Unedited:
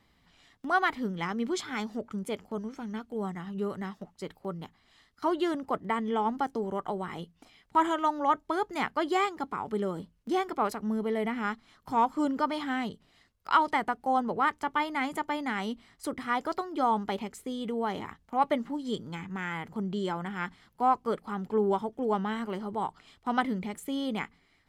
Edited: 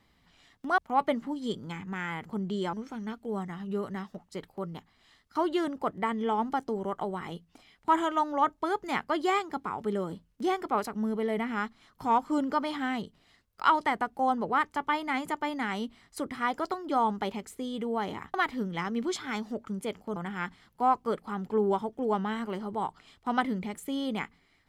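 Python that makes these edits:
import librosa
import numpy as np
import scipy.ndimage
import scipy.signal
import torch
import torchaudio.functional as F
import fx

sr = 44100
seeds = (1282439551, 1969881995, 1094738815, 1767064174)

y = fx.edit(x, sr, fx.swap(start_s=0.78, length_s=1.82, other_s=18.21, other_length_s=1.95), tone=tone)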